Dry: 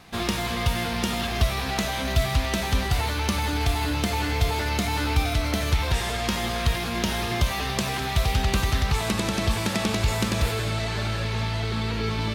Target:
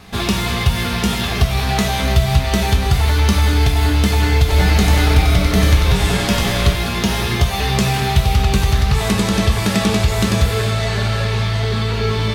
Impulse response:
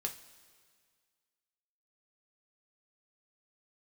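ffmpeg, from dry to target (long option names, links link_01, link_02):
-filter_complex "[0:a]lowshelf=frequency=100:gain=6,acompressor=threshold=-19dB:ratio=3,asettb=1/sr,asplit=3[link_01][link_02][link_03];[link_01]atrim=end=4.394[link_04];[link_02]atrim=start=4.39:end=6.73,asetpts=PTS-STARTPTS,afade=type=in:duration=0.004:curve=qsin,afade=type=out:start_time=2.336:duration=0.004:curve=qsin,asplit=7[link_05][link_06][link_07][link_08][link_09][link_10][link_11];[link_06]adelay=94,afreqshift=-120,volume=-4dB[link_12];[link_07]adelay=188,afreqshift=-240,volume=-10.9dB[link_13];[link_08]adelay=282,afreqshift=-360,volume=-17.9dB[link_14];[link_09]adelay=376,afreqshift=-480,volume=-24.8dB[link_15];[link_10]adelay=470,afreqshift=-600,volume=-31.7dB[link_16];[link_11]adelay=564,afreqshift=-720,volume=-38.7dB[link_17];[link_05][link_12][link_13][link_14][link_15][link_16][link_17]amix=inputs=7:normalize=0,atrim=end_sample=103194[link_18];[link_03]atrim=start=6.726[link_19];[link_04][link_18]acrossfade=duration=0.004:curve1=hsin:curve2=qsin[link_20];[link_20][link_19]acrossfade=duration=0.004:curve1=qsin:curve2=hsin[link_21];[1:a]atrim=start_sample=2205[link_22];[link_21][link_22]afir=irnorm=-1:irlink=0,volume=7.5dB"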